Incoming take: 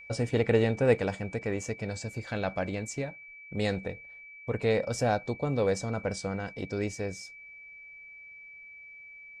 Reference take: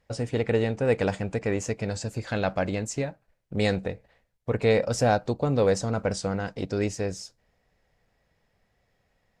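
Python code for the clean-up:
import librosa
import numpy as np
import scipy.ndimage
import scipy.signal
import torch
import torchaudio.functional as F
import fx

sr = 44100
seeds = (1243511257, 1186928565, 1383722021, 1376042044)

y = fx.notch(x, sr, hz=2300.0, q=30.0)
y = fx.fix_level(y, sr, at_s=0.98, step_db=5.0)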